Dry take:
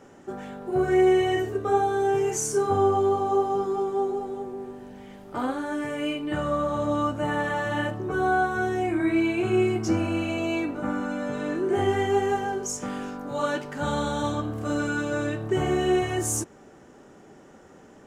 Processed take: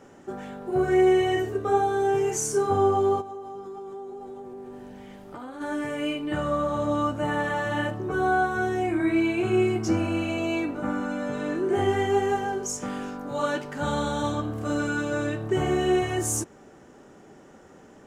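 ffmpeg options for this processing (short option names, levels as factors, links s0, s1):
-filter_complex "[0:a]asplit=3[s0][s1][s2];[s0]afade=t=out:st=3.2:d=0.02[s3];[s1]acompressor=threshold=0.0158:ratio=6:attack=3.2:release=140:knee=1:detection=peak,afade=t=in:st=3.2:d=0.02,afade=t=out:st=5.6:d=0.02[s4];[s2]afade=t=in:st=5.6:d=0.02[s5];[s3][s4][s5]amix=inputs=3:normalize=0"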